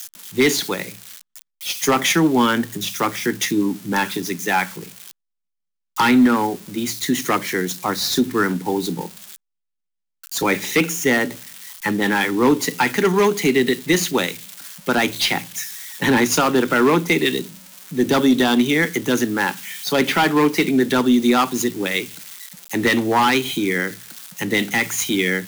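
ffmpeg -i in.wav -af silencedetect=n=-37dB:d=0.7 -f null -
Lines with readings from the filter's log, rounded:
silence_start: 5.11
silence_end: 5.96 | silence_duration: 0.85
silence_start: 9.36
silence_end: 10.24 | silence_duration: 0.87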